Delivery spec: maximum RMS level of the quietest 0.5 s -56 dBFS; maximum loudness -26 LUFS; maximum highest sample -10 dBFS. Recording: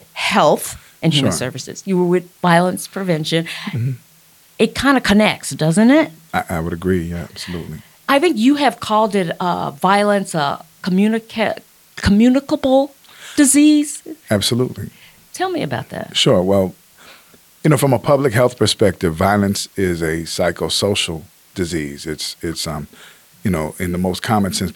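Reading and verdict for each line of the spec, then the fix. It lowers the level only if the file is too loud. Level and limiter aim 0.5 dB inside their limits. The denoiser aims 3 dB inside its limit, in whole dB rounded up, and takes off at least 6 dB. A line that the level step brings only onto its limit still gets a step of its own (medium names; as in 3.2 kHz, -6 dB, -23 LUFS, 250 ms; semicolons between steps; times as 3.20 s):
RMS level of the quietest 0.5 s -50 dBFS: fail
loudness -17.0 LUFS: fail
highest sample -1.5 dBFS: fail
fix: trim -9.5 dB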